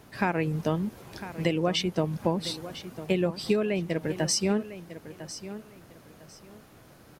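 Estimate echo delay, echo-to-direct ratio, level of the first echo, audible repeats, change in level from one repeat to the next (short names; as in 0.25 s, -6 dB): 1.002 s, -13.5 dB, -13.5 dB, 2, -12.5 dB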